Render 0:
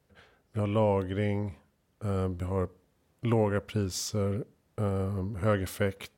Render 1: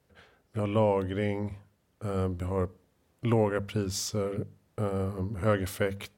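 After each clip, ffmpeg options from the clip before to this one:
-af "bandreject=f=50:t=h:w=6,bandreject=f=100:t=h:w=6,bandreject=f=150:t=h:w=6,bandreject=f=200:t=h:w=6,volume=1dB"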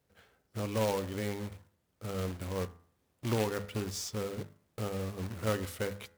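-af "acrusher=bits=2:mode=log:mix=0:aa=0.000001,bandreject=f=84.29:t=h:w=4,bandreject=f=168.58:t=h:w=4,bandreject=f=252.87:t=h:w=4,bandreject=f=337.16:t=h:w=4,bandreject=f=421.45:t=h:w=4,bandreject=f=505.74:t=h:w=4,bandreject=f=590.03:t=h:w=4,bandreject=f=674.32:t=h:w=4,bandreject=f=758.61:t=h:w=4,bandreject=f=842.9:t=h:w=4,bandreject=f=927.19:t=h:w=4,bandreject=f=1.01148k:t=h:w=4,bandreject=f=1.09577k:t=h:w=4,bandreject=f=1.18006k:t=h:w=4,bandreject=f=1.26435k:t=h:w=4,bandreject=f=1.34864k:t=h:w=4,bandreject=f=1.43293k:t=h:w=4,bandreject=f=1.51722k:t=h:w=4,bandreject=f=1.60151k:t=h:w=4,bandreject=f=1.6858k:t=h:w=4,bandreject=f=1.77009k:t=h:w=4,bandreject=f=1.85438k:t=h:w=4,bandreject=f=1.93867k:t=h:w=4,bandreject=f=2.02296k:t=h:w=4,bandreject=f=2.10725k:t=h:w=4,volume=-6dB"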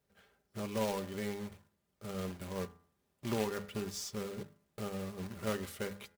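-af "aecho=1:1:5:0.46,volume=-4dB"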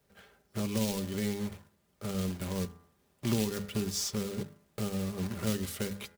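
-filter_complex "[0:a]acrossover=split=310|3000[a][b][c];[b]acompressor=threshold=-49dB:ratio=6[d];[a][d][c]amix=inputs=3:normalize=0,volume=8.5dB"

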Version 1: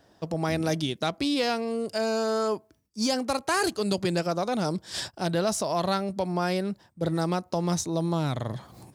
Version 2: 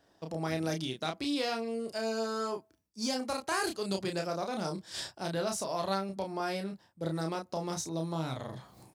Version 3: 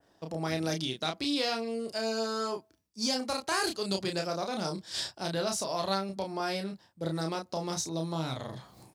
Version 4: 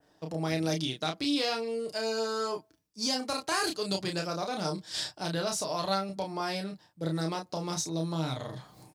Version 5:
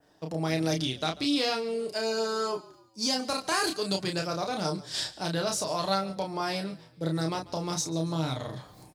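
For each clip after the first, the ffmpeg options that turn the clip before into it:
-filter_complex "[0:a]lowshelf=f=270:g=-4.5,asplit=2[a][b];[b]adelay=31,volume=-4.5dB[c];[a][c]amix=inputs=2:normalize=0,volume=-7dB"
-af "adynamicequalizer=threshold=0.00224:dfrequency=4400:dqfactor=1.1:tfrequency=4400:tqfactor=1.1:attack=5:release=100:ratio=0.375:range=2.5:mode=boostabove:tftype=bell,volume=1dB"
-af "aecho=1:1:6.6:0.37"
-filter_complex "[0:a]asplit=4[a][b][c][d];[b]adelay=141,afreqshift=-34,volume=-20dB[e];[c]adelay=282,afreqshift=-68,volume=-27.1dB[f];[d]adelay=423,afreqshift=-102,volume=-34.3dB[g];[a][e][f][g]amix=inputs=4:normalize=0,volume=2dB"

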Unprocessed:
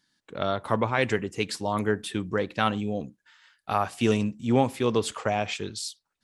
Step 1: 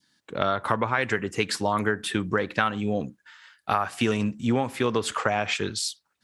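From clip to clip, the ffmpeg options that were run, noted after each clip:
-af "highpass=62,adynamicequalizer=threshold=0.00794:dfrequency=1500:dqfactor=1.2:tfrequency=1500:tqfactor=1.2:attack=5:release=100:ratio=0.375:range=4:mode=boostabove:tftype=bell,acompressor=threshold=-25dB:ratio=6,volume=5dB"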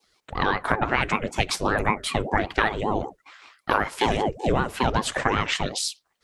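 -af "aeval=exprs='val(0)*sin(2*PI*410*n/s+410*0.6/5.2*sin(2*PI*5.2*n/s))':c=same,volume=4.5dB"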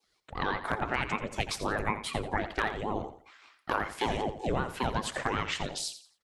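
-af "asoftclip=type=hard:threshold=-6.5dB,aecho=1:1:86|172|258:0.251|0.0728|0.0211,volume=-8dB"

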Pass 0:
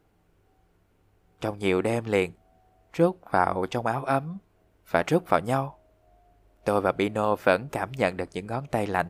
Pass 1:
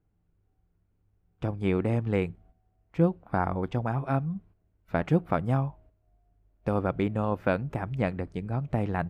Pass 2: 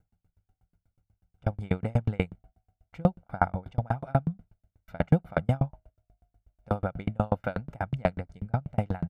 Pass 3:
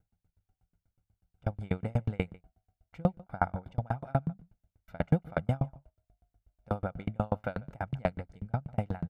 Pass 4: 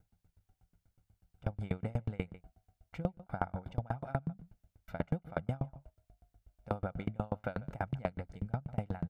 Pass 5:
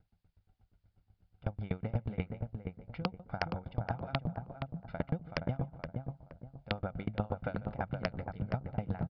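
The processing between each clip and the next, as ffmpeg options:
-af "agate=range=-10dB:threshold=-55dB:ratio=16:detection=peak,bass=f=250:g=13,treble=f=4k:g=-12,volume=-6.5dB"
-af "aecho=1:1:1.4:0.64,aeval=exprs='val(0)*pow(10,-38*if(lt(mod(8.2*n/s,1),2*abs(8.2)/1000),1-mod(8.2*n/s,1)/(2*abs(8.2)/1000),(mod(8.2*n/s,1)-2*abs(8.2)/1000)/(1-2*abs(8.2)/1000))/20)':c=same,volume=6.5dB"
-filter_complex "[0:a]asplit=2[a][b];[b]adelay=145.8,volume=-23dB,highshelf=f=4k:g=-3.28[c];[a][c]amix=inputs=2:normalize=0,volume=-4dB"
-af "acompressor=threshold=-37dB:ratio=4,volume=4.5dB"
-filter_complex "[0:a]aresample=11025,aeval=exprs='(mod(7.5*val(0)+1,2)-1)/7.5':c=same,aresample=44100,asplit=2[a][b];[b]adelay=471,lowpass=f=1.2k:p=1,volume=-4dB,asplit=2[c][d];[d]adelay=471,lowpass=f=1.2k:p=1,volume=0.32,asplit=2[e][f];[f]adelay=471,lowpass=f=1.2k:p=1,volume=0.32,asplit=2[g][h];[h]adelay=471,lowpass=f=1.2k:p=1,volume=0.32[i];[a][c][e][g][i]amix=inputs=5:normalize=0"

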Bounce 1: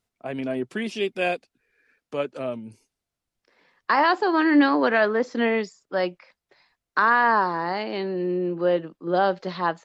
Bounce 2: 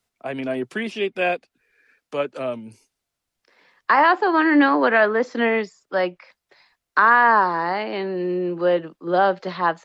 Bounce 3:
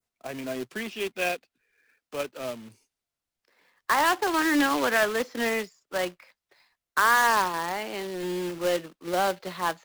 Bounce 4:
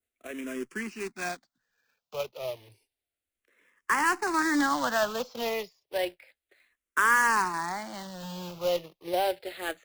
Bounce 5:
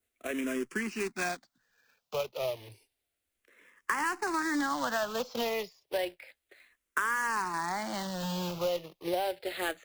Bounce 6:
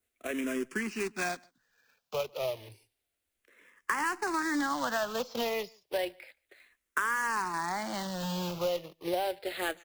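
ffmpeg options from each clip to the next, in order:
-filter_complex "[0:a]lowshelf=f=490:g=-6,acrossover=split=120|410|3000[a][b][c][d];[d]acompressor=threshold=-52dB:ratio=4[e];[a][b][c][e]amix=inputs=4:normalize=0,volume=5.5dB"
-af "acrusher=bits=2:mode=log:mix=0:aa=0.000001,adynamicequalizer=threshold=0.0282:dfrequency=3000:dqfactor=0.91:tfrequency=3000:tqfactor=0.91:attack=5:release=100:ratio=0.375:range=2:mode=boostabove:tftype=bell,volume=-8dB"
-filter_complex "[0:a]asplit=2[a][b];[b]afreqshift=-0.31[c];[a][c]amix=inputs=2:normalize=1"
-af "acompressor=threshold=-35dB:ratio=4,volume=5.5dB"
-filter_complex "[0:a]asplit=2[a][b];[b]adelay=145.8,volume=-28dB,highshelf=f=4k:g=-3.28[c];[a][c]amix=inputs=2:normalize=0"

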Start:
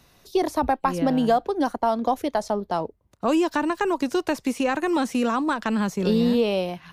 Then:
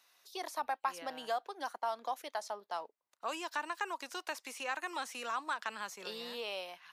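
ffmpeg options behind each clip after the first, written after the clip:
-af "highpass=980,volume=-8dB"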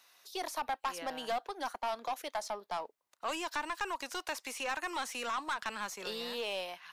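-af "aeval=exprs='(tanh(50.1*val(0)+0.15)-tanh(0.15))/50.1':c=same,volume=5dB"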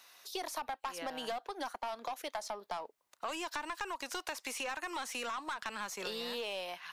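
-af "acompressor=threshold=-41dB:ratio=6,volume=4.5dB"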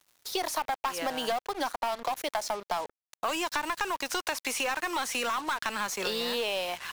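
-af "acrusher=bits=7:mix=0:aa=0.5,volume=8.5dB"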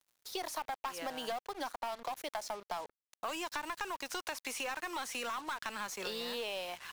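-af "aeval=exprs='sgn(val(0))*max(abs(val(0))-0.00119,0)':c=same,volume=-8dB"

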